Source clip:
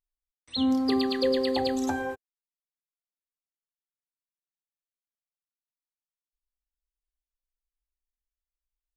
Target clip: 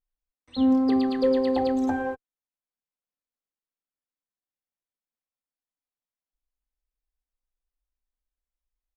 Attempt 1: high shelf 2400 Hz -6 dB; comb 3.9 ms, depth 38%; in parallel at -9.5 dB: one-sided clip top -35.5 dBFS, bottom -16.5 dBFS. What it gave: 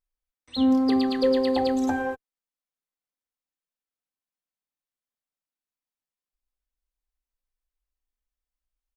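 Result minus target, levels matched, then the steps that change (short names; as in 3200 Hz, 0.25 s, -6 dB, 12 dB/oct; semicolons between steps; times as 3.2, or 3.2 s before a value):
4000 Hz band +6.5 dB
change: high shelf 2400 Hz -15.5 dB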